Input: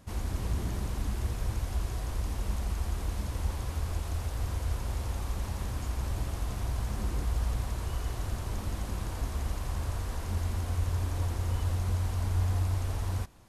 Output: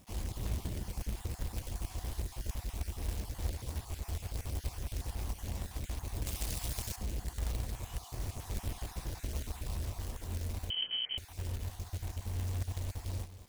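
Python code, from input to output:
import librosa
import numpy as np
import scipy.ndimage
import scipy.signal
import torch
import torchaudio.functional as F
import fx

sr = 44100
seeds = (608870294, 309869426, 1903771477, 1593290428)

p1 = fx.spec_dropout(x, sr, seeds[0], share_pct=31)
p2 = 10.0 ** (-35.0 / 20.0) * np.tanh(p1 / 10.0 ** (-35.0 / 20.0))
p3 = p1 + F.gain(torch.from_numpy(p2), -9.5).numpy()
p4 = fx.rider(p3, sr, range_db=10, speed_s=2.0)
p5 = p4 + fx.echo_single(p4, sr, ms=196, db=-13.0, dry=0)
p6 = fx.quant_companded(p5, sr, bits=4)
p7 = fx.high_shelf(p6, sr, hz=2000.0, db=10.5, at=(6.26, 6.96))
p8 = fx.freq_invert(p7, sr, carrier_hz=3100, at=(10.7, 11.18))
p9 = fx.peak_eq(p8, sr, hz=1300.0, db=-7.0, octaves=0.99)
y = F.gain(torch.from_numpy(p9), -7.0).numpy()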